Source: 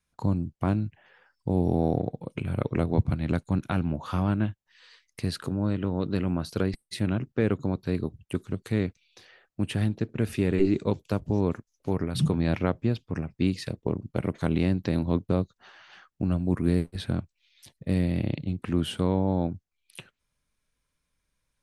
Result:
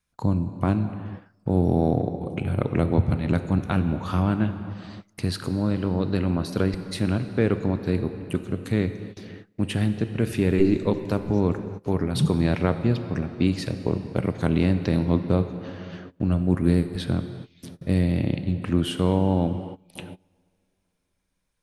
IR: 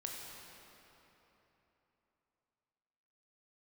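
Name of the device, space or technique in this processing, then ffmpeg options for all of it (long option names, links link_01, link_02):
keyed gated reverb: -filter_complex "[0:a]asplit=3[link_01][link_02][link_03];[1:a]atrim=start_sample=2205[link_04];[link_02][link_04]afir=irnorm=-1:irlink=0[link_05];[link_03]apad=whole_len=953730[link_06];[link_05][link_06]sidechaingate=range=-23dB:threshold=-57dB:ratio=16:detection=peak,volume=-3dB[link_07];[link_01][link_07]amix=inputs=2:normalize=0"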